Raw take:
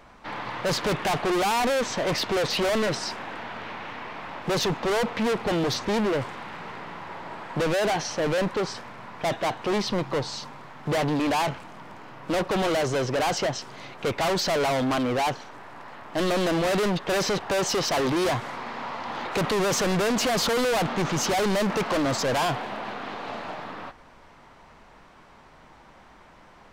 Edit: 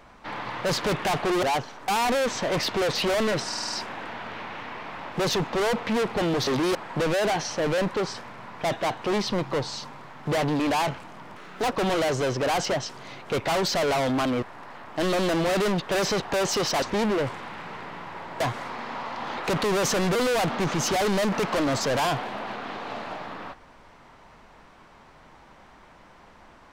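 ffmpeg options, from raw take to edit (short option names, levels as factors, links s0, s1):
-filter_complex "[0:a]asplit=16[s0][s1][s2][s3][s4][s5][s6][s7][s8][s9][s10][s11][s12][s13][s14][s15];[s0]atrim=end=1.432[s16];[s1]atrim=start=15.148:end=15.602[s17];[s2]atrim=start=1.428:end=3.072[s18];[s3]atrim=start=3.018:end=3.072[s19];[s4]atrim=start=3.018:end=3.072[s20];[s5]atrim=start=3.018:end=3.072[s21];[s6]atrim=start=3.018:end=3.072[s22];[s7]atrim=start=3.018:end=5.772[s23];[s8]atrim=start=17.998:end=18.282[s24];[s9]atrim=start=7.348:end=11.964[s25];[s10]atrim=start=11.96:end=12.44,asetpts=PTS-STARTPTS,asetrate=59976,aresample=44100[s26];[s11]atrim=start=12.436:end=15.152[s27];[s12]atrim=start=15.598:end=18.002[s28];[s13]atrim=start=5.768:end=7.352[s29];[s14]atrim=start=18.278:end=20.032[s30];[s15]atrim=start=20.528[s31];[s16][s17]acrossfade=d=0.004:c1=hsin:c2=hsin[s32];[s32][s18]acrossfade=d=0.004:c1=hsin:c2=hsin[s33];[s33][s19]acrossfade=d=0.004:c1=hsin:c2=hsin[s34];[s34][s20]acrossfade=d=0.004:c1=hsin:c2=hsin[s35];[s35][s21]acrossfade=d=0.004:c1=hsin:c2=hsin[s36];[s36][s22]acrossfade=d=0.004:c1=hsin:c2=hsin[s37];[s37][s23]acrossfade=d=0.004:c1=hsin:c2=hsin[s38];[s38][s24]acrossfade=d=0.004:c1=hsin:c2=hsin[s39];[s39][s25]acrossfade=d=0.004:c1=hsin:c2=hsin[s40];[s40][s26]acrossfade=d=0.004:c1=hsin:c2=hsin[s41];[s41][s27]acrossfade=d=0.004:c1=hsin:c2=hsin[s42];[s42][s28]acrossfade=d=0.004:c1=hsin:c2=hsin[s43];[s43][s29]acrossfade=d=0.004:c1=hsin:c2=hsin[s44];[s44][s30]acrossfade=d=0.004:c1=hsin:c2=hsin[s45];[s45][s31]acrossfade=d=0.004:c1=hsin:c2=hsin"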